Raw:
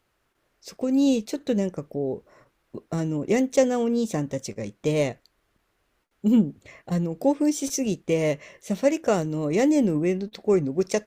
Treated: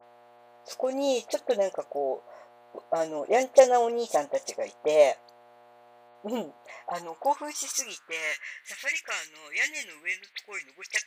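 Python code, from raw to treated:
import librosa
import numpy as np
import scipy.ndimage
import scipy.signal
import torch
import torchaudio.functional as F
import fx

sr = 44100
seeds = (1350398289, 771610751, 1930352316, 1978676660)

y = fx.dmg_buzz(x, sr, base_hz=120.0, harmonics=38, level_db=-49.0, tilt_db=-8, odd_only=False)
y = fx.filter_sweep_highpass(y, sr, from_hz=670.0, to_hz=2100.0, start_s=6.49, end_s=8.89, q=3.5)
y = fx.dispersion(y, sr, late='highs', ms=42.0, hz=2500.0)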